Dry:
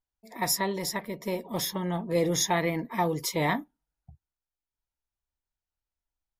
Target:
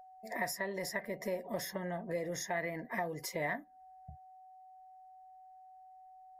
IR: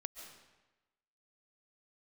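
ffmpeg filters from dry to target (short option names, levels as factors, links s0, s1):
-af "aeval=exprs='val(0)+0.002*sin(2*PI*750*n/s)':c=same,acompressor=threshold=0.0112:ratio=6,superequalizer=7b=1.41:8b=2.82:11b=3.16:13b=0.501"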